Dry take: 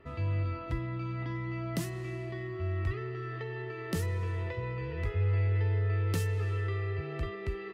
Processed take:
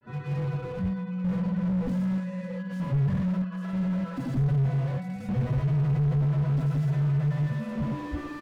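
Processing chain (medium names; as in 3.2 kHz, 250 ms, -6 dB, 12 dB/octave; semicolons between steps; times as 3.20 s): formant-preserving pitch shift +8.5 st; granulator 100 ms, grains 20 per s, pitch spread up and down by 0 st; in parallel at -3.5 dB: saturation -34.5 dBFS, distortion -9 dB; on the sum: random-step tremolo, depth 75%; speed mistake 48 kHz file played as 44.1 kHz; doubling 22 ms -7 dB; thinning echo 848 ms, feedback 33%, level -20.5 dB; slew-rate limiter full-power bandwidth 4.5 Hz; trim +8.5 dB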